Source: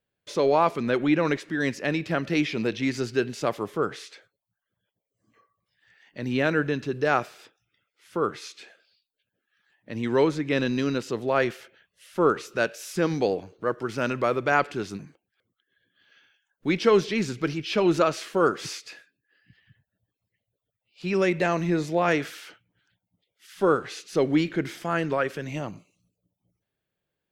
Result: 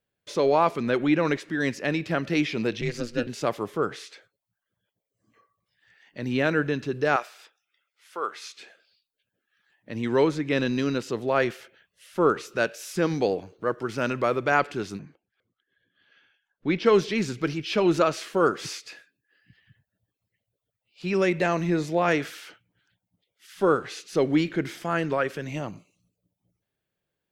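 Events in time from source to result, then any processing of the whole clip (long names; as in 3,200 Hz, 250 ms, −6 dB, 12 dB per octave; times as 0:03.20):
0:02.81–0:03.27: ring modulation 120 Hz
0:07.16–0:08.57: high-pass filter 680 Hz
0:14.99–0:16.86: high-frequency loss of the air 140 metres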